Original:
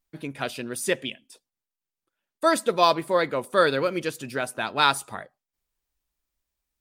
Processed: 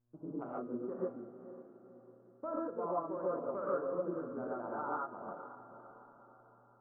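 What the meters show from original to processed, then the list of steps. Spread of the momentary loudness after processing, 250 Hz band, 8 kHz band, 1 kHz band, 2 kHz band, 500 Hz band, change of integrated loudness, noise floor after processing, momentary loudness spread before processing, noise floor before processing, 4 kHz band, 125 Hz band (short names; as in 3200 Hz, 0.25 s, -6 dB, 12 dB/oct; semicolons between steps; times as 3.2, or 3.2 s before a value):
20 LU, -9.5 dB, under -40 dB, -15.5 dB, -25.5 dB, -12.0 dB, -15.0 dB, -64 dBFS, 12 LU, under -85 dBFS, under -40 dB, -14.5 dB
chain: Wiener smoothing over 25 samples; steep low-pass 1400 Hz 72 dB/oct; bell 90 Hz -13 dB 1.4 oct; compressor 3:1, threshold -35 dBFS, peak gain reduction 15 dB; buzz 120 Hz, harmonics 14, -73 dBFS -9 dB/oct; resonator 83 Hz, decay 1.5 s, harmonics all, mix 60%; diffused feedback echo 0.499 s, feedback 48%, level -12 dB; non-linear reverb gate 0.17 s rising, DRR -6 dB; gain -2 dB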